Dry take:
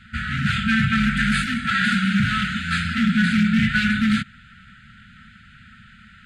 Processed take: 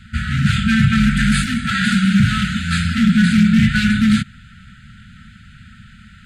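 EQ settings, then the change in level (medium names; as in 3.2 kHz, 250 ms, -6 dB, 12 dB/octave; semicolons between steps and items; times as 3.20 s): tone controls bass +9 dB, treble +9 dB; 0.0 dB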